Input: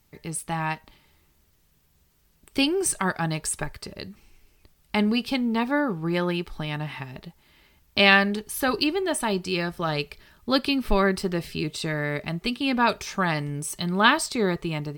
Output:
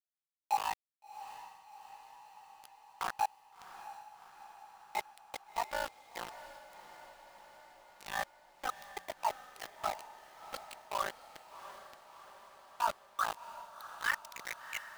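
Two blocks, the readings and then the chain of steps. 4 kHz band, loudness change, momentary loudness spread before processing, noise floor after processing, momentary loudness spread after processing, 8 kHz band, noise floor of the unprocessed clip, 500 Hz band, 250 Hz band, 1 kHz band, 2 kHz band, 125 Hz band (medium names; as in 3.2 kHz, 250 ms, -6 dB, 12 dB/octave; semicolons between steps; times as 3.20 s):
-19.5 dB, -15.0 dB, 14 LU, under -85 dBFS, 20 LU, -17.5 dB, -64 dBFS, -19.5 dB, -36.0 dB, -8.5 dB, -16.0 dB, -34.5 dB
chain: expander on every frequency bin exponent 2; high-pass 630 Hz 24 dB/octave; spectral selection erased 11.50–13.95 s, 1.7–3.5 kHz; treble shelf 2.4 kHz +5.5 dB; reverse; compression 16:1, threshold -35 dBFS, peak gain reduction 24 dB; reverse; ring modulator 27 Hz; band-pass sweep 900 Hz -> 2.6 kHz, 12.68–14.77 s; small samples zeroed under -46.5 dBFS; on a send: echo that smears into a reverb 697 ms, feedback 64%, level -13 dB; on the sum: trim +12.5 dB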